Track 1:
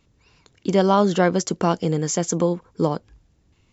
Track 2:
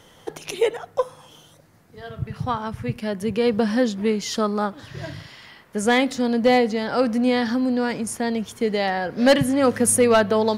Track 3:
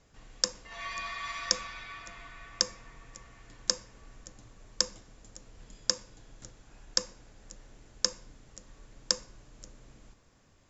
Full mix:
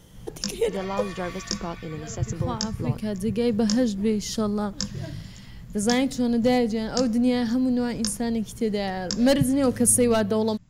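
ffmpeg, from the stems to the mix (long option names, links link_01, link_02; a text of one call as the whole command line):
ffmpeg -i stem1.wav -i stem2.wav -i stem3.wav -filter_complex "[0:a]volume=-13dB[link_01];[1:a]equalizer=frequency=1400:width=0.32:gain=-12,volume=2.5dB[link_02];[2:a]lowshelf=frequency=270:width_type=q:width=3:gain=13.5,flanger=delay=16:depth=3.5:speed=0.92,volume=0.5dB[link_03];[link_01][link_02][link_03]amix=inputs=3:normalize=0" out.wav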